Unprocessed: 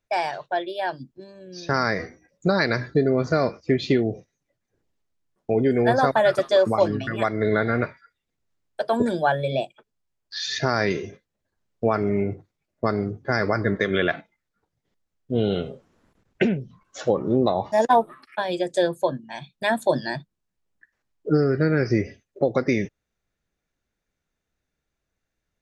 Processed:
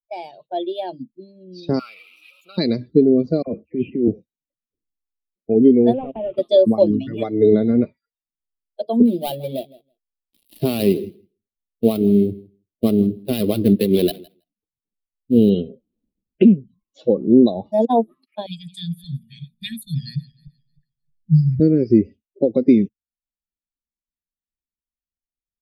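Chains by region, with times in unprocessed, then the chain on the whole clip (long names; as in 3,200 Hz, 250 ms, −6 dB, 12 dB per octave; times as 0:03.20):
0:01.79–0:02.58: converter with a step at zero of −25.5 dBFS + pair of resonant band-passes 1,800 Hz, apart 0.86 octaves + spectral tilt +3 dB per octave
0:03.42–0:04.08: Chebyshev low-pass filter 3,000 Hz, order 8 + compressor whose output falls as the input rises −25 dBFS + all-pass dispersion lows, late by 52 ms, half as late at 1,100 Hz
0:05.93–0:06.38: variable-slope delta modulation 16 kbit/s + downward compressor 3 to 1, threshold −22 dBFS
0:07.05–0:07.52: comb filter 6.8 ms, depth 46% + surface crackle 190 per second −46 dBFS
0:09.05–0:15.50: gap after every zero crossing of 0.18 ms + repeating echo 162 ms, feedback 16%, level −15.5 dB
0:18.46–0:21.60: feedback delay that plays each chunk backwards 155 ms, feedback 52%, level −13 dB + elliptic band-stop filter 160–1,900 Hz, stop band 60 dB + low-shelf EQ 160 Hz +10.5 dB
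whole clip: spectral dynamics exaggerated over time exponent 1.5; drawn EQ curve 130 Hz 0 dB, 220 Hz +13 dB, 620 Hz +2 dB, 1,600 Hz −24 dB, 2,700 Hz −3 dB, 4,100 Hz +1 dB, 6,400 Hz −23 dB, 11,000 Hz +4 dB; automatic gain control gain up to 8 dB; level −1 dB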